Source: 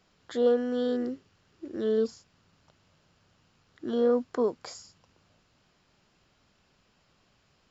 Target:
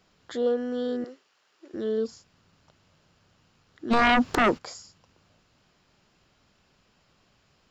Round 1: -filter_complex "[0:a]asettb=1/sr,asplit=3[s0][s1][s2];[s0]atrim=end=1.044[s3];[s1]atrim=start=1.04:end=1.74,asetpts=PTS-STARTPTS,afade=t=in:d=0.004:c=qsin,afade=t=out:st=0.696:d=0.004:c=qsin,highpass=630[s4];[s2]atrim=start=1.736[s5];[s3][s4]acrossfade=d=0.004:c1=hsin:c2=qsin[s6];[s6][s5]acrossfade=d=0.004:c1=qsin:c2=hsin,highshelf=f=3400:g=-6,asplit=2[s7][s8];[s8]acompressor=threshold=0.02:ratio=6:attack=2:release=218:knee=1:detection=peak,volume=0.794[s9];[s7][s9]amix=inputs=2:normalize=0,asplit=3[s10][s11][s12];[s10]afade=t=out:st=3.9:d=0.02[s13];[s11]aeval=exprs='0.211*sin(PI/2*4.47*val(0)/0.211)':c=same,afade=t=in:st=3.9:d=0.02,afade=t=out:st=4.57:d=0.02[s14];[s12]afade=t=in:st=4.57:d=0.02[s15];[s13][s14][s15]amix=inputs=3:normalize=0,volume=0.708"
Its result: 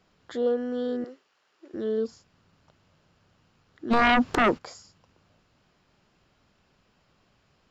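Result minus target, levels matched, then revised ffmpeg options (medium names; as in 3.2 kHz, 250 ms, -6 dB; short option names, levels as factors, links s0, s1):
8 kHz band -3.5 dB
-filter_complex "[0:a]asettb=1/sr,asplit=3[s0][s1][s2];[s0]atrim=end=1.044[s3];[s1]atrim=start=1.04:end=1.74,asetpts=PTS-STARTPTS,afade=t=in:d=0.004:c=qsin,afade=t=out:st=0.696:d=0.004:c=qsin,highpass=630[s4];[s2]atrim=start=1.736[s5];[s3][s4]acrossfade=d=0.004:c1=hsin:c2=qsin[s6];[s6][s5]acrossfade=d=0.004:c1=qsin:c2=hsin,asplit=2[s7][s8];[s8]acompressor=threshold=0.02:ratio=6:attack=2:release=218:knee=1:detection=peak,volume=0.794[s9];[s7][s9]amix=inputs=2:normalize=0,asplit=3[s10][s11][s12];[s10]afade=t=out:st=3.9:d=0.02[s13];[s11]aeval=exprs='0.211*sin(PI/2*4.47*val(0)/0.211)':c=same,afade=t=in:st=3.9:d=0.02,afade=t=out:st=4.57:d=0.02[s14];[s12]afade=t=in:st=4.57:d=0.02[s15];[s13][s14][s15]amix=inputs=3:normalize=0,volume=0.708"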